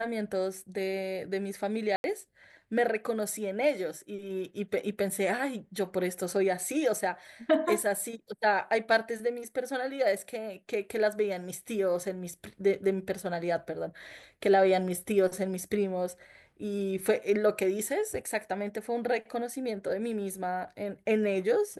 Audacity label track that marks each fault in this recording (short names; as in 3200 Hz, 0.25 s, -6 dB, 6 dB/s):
1.960000	2.040000	gap 81 ms